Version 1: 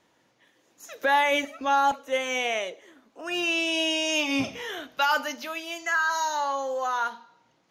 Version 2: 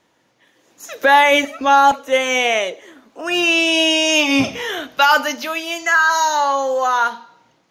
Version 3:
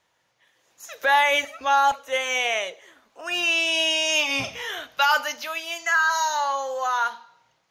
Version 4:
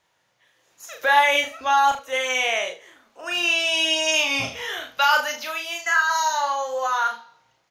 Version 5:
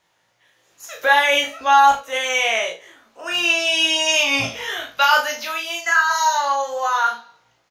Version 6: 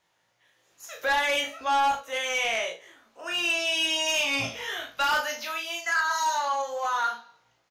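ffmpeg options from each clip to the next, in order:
ffmpeg -i in.wav -af "dynaudnorm=framelen=240:gausssize=5:maxgain=6.5dB,volume=4dB" out.wav
ffmpeg -i in.wav -af "equalizer=frequency=270:width=0.99:gain=-14,volume=-5.5dB" out.wav
ffmpeg -i in.wav -af "aecho=1:1:35|75:0.596|0.211" out.wav
ffmpeg -i in.wav -filter_complex "[0:a]asplit=2[link_01][link_02];[link_02]adelay=18,volume=-5dB[link_03];[link_01][link_03]amix=inputs=2:normalize=0,volume=2dB" out.wav
ffmpeg -i in.wav -af "asoftclip=type=tanh:threshold=-13dB,volume=-6dB" out.wav

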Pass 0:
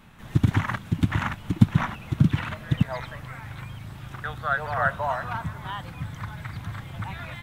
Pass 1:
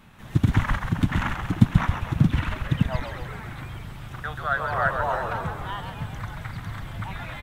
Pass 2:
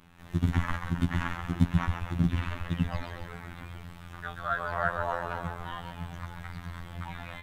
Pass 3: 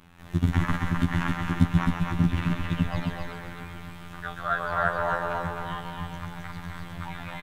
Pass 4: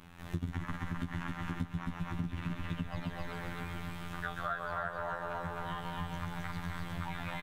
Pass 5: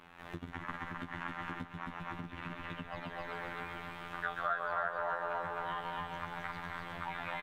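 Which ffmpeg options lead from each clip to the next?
ffmpeg -i in.wav -filter_complex "[0:a]asplit=9[link_01][link_02][link_03][link_04][link_05][link_06][link_07][link_08][link_09];[link_02]adelay=134,afreqshift=-70,volume=-6dB[link_10];[link_03]adelay=268,afreqshift=-140,volume=-10.4dB[link_11];[link_04]adelay=402,afreqshift=-210,volume=-14.9dB[link_12];[link_05]adelay=536,afreqshift=-280,volume=-19.3dB[link_13];[link_06]adelay=670,afreqshift=-350,volume=-23.7dB[link_14];[link_07]adelay=804,afreqshift=-420,volume=-28.2dB[link_15];[link_08]adelay=938,afreqshift=-490,volume=-32.6dB[link_16];[link_09]adelay=1072,afreqshift=-560,volume=-37.1dB[link_17];[link_01][link_10][link_11][link_12][link_13][link_14][link_15][link_16][link_17]amix=inputs=9:normalize=0" out.wav
ffmpeg -i in.wav -af "afftfilt=real='hypot(re,im)*cos(PI*b)':imag='0':win_size=2048:overlap=0.75,volume=-2.5dB" out.wav
ffmpeg -i in.wav -af "aecho=1:1:262:0.596,volume=3dB" out.wav
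ffmpeg -i in.wav -af "acompressor=threshold=-32dB:ratio=12" out.wav
ffmpeg -i in.wav -af "bass=frequency=250:gain=-15,treble=frequency=4000:gain=-12,volume=2.5dB" out.wav

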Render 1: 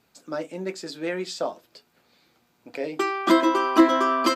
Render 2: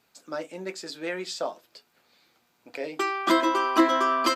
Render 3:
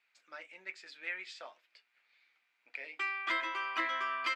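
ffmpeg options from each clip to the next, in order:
ffmpeg -i in.wav -af "lowshelf=frequency=420:gain=-8" out.wav
ffmpeg -i in.wav -af "bandpass=frequency=2200:width_type=q:width=3.1:csg=0" out.wav

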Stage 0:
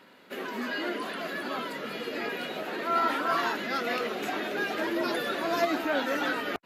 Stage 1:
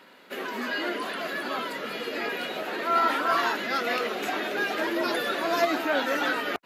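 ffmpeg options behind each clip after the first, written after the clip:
ffmpeg -i in.wav -af "lowshelf=frequency=220:gain=-8.5,volume=3.5dB" out.wav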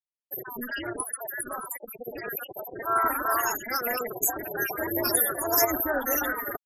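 ffmpeg -i in.wav -af "aexciter=amount=8.9:drive=8.8:freq=5900,afftfilt=real='re*gte(hypot(re,im),0.112)':imag='im*gte(hypot(re,im),0.112)':win_size=1024:overlap=0.75,tremolo=f=240:d=0.667,volume=2dB" out.wav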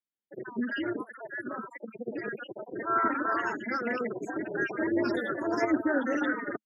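ffmpeg -i in.wav -af "highpass=frequency=110:width=0.5412,highpass=frequency=110:width=1.3066,equalizer=frequency=220:width_type=q:width=4:gain=10,equalizer=frequency=310:width_type=q:width=4:gain=6,equalizer=frequency=750:width_type=q:width=4:gain=-8,equalizer=frequency=1100:width_type=q:width=4:gain=-6,equalizer=frequency=2600:width_type=q:width=4:gain=-5,lowpass=frequency=3500:width=0.5412,lowpass=frequency=3500:width=1.3066" out.wav

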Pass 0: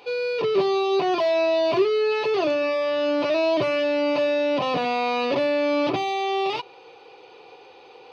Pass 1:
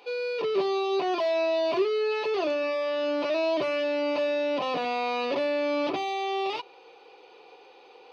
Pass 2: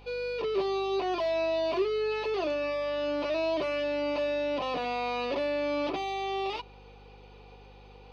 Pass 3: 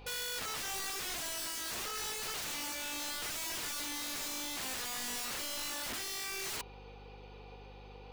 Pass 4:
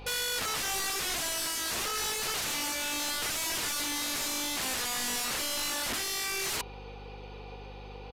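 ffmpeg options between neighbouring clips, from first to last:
ffmpeg -i in.wav -af "highpass=230,volume=-4.5dB" out.wav
ffmpeg -i in.wav -af "aeval=exprs='val(0)+0.00355*(sin(2*PI*50*n/s)+sin(2*PI*2*50*n/s)/2+sin(2*PI*3*50*n/s)/3+sin(2*PI*4*50*n/s)/4+sin(2*PI*5*50*n/s)/5)':channel_layout=same,volume=-3dB" out.wav
ffmpeg -i in.wav -af "aeval=exprs='(mod(53.1*val(0)+1,2)-1)/53.1':channel_layout=same" out.wav
ffmpeg -i in.wav -af "aresample=32000,aresample=44100,volume=7dB" out.wav

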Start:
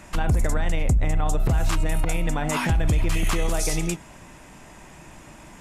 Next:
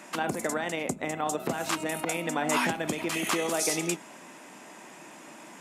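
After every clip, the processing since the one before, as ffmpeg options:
ffmpeg -i in.wav -af "highpass=frequency=220:width=0.5412,highpass=frequency=220:width=1.3066" out.wav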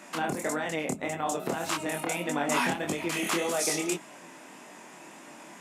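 ffmpeg -i in.wav -af "flanger=delay=20:depth=7.3:speed=1.7,volume=2.5dB" out.wav

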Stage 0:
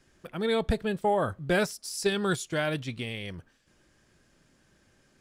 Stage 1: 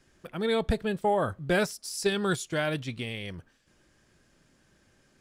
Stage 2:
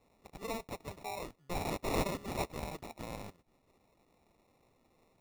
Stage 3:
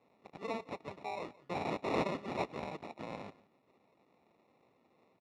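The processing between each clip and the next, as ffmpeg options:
ffmpeg -i in.wav -af anull out.wav
ffmpeg -i in.wav -af "aderivative,acrusher=samples=28:mix=1:aa=0.000001,volume=4dB" out.wav
ffmpeg -i in.wav -af "highpass=160,lowpass=3400,aecho=1:1:173:0.0891,volume=1dB" out.wav

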